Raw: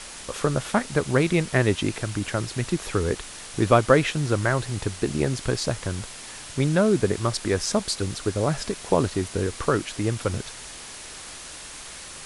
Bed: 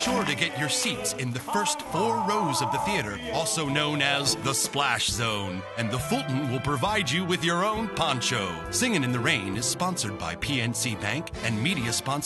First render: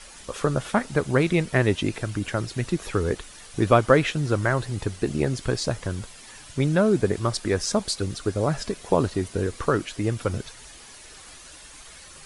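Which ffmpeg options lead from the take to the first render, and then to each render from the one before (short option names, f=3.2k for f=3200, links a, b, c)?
-af "afftdn=nr=9:nf=-40"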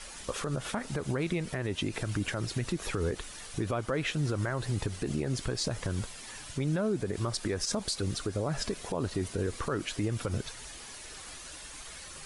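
-af "acompressor=threshold=-22dB:ratio=6,alimiter=limit=-21.5dB:level=0:latency=1:release=75"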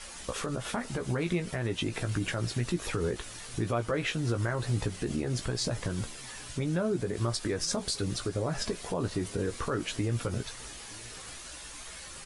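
-filter_complex "[0:a]asplit=2[a][b];[b]adelay=17,volume=-7dB[c];[a][c]amix=inputs=2:normalize=0,aecho=1:1:920:0.0668"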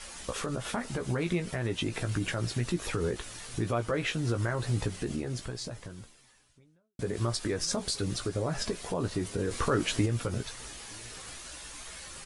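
-filter_complex "[0:a]asplit=4[a][b][c][d];[a]atrim=end=6.99,asetpts=PTS-STARTPTS,afade=t=out:st=4.94:d=2.05:c=qua[e];[b]atrim=start=6.99:end=9.512,asetpts=PTS-STARTPTS,afade=t=in:d=0.004:c=hsin[f];[c]atrim=start=9.508:end=10.062,asetpts=PTS-STARTPTS,volume=4.5dB[g];[d]atrim=start=10.058[h];[e][f]concat=n=2:v=0:a=1[i];[i][g]acrossfade=d=0.004:c1=hsin:c2=hsin[j];[j][h]acrossfade=d=0.004:c1=hsin:c2=hsin"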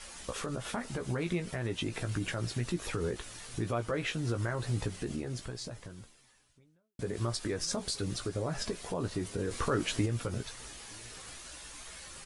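-af "volume=-3dB"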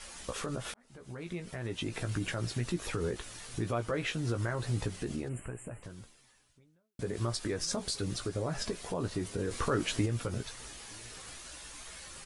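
-filter_complex "[0:a]asplit=3[a][b][c];[a]afade=t=out:st=5.28:d=0.02[d];[b]asuperstop=centerf=4700:order=20:qfactor=1.1,afade=t=in:st=5.28:d=0.02,afade=t=out:st=5.82:d=0.02[e];[c]afade=t=in:st=5.82:d=0.02[f];[d][e][f]amix=inputs=3:normalize=0,asplit=2[g][h];[g]atrim=end=0.74,asetpts=PTS-STARTPTS,afade=t=out:st=0.736:d=0.004:c=hsin[i];[h]atrim=start=0.74,asetpts=PTS-STARTPTS,afade=t=in:d=1.29[j];[i][j]concat=n=2:v=0:a=1"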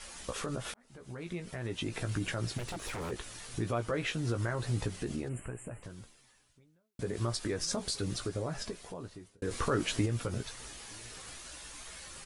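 -filter_complex "[0:a]asplit=3[a][b][c];[a]afade=t=out:st=2.57:d=0.02[d];[b]aeval=exprs='0.0224*(abs(mod(val(0)/0.0224+3,4)-2)-1)':c=same,afade=t=in:st=2.57:d=0.02,afade=t=out:st=3.1:d=0.02[e];[c]afade=t=in:st=3.1:d=0.02[f];[d][e][f]amix=inputs=3:normalize=0,asplit=2[g][h];[g]atrim=end=9.42,asetpts=PTS-STARTPTS,afade=t=out:st=8.23:d=1.19[i];[h]atrim=start=9.42,asetpts=PTS-STARTPTS,afade=t=in:d=0.004:c=hsin[j];[i][j]concat=n=2:v=0:a=1"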